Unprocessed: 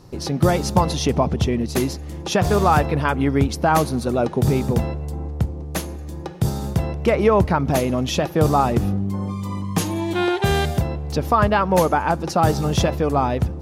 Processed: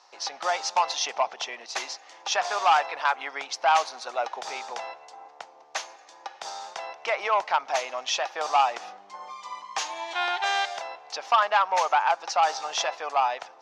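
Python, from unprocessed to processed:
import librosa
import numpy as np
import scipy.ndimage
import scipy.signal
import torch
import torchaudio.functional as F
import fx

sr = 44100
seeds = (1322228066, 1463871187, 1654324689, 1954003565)

y = scipy.signal.sosfilt(scipy.signal.cheby1(3, 1.0, [750.0, 6200.0], 'bandpass', fs=sr, output='sos'), x)
y = fx.transformer_sat(y, sr, knee_hz=1500.0)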